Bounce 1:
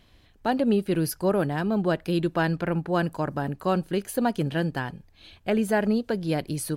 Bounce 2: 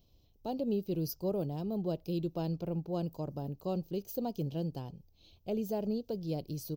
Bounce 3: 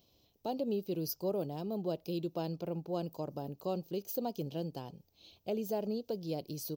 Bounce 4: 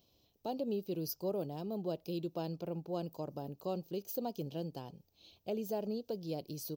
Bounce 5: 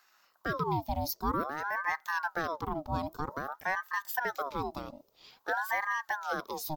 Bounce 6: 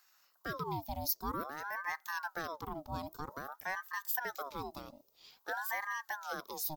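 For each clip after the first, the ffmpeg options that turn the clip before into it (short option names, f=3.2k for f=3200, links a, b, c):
-af "firequalizer=gain_entry='entry(160,0);entry(230,-4);entry(470,-1);entry(1100,-13);entry(1700,-29);entry(2600,-10);entry(5700,3);entry(9700,-18);entry(15000,13)':delay=0.05:min_phase=1,volume=-7.5dB"
-filter_complex "[0:a]asplit=2[a][b];[b]acompressor=threshold=-41dB:ratio=6,volume=-2.5dB[c];[a][c]amix=inputs=2:normalize=0,highpass=f=330:p=1"
-af "bandreject=f=2.1k:w=27,volume=-2dB"
-af "aeval=exprs='val(0)*sin(2*PI*920*n/s+920*0.55/0.51*sin(2*PI*0.51*n/s))':c=same,volume=8dB"
-af "highshelf=f=4.6k:g=11.5,volume=-7.5dB"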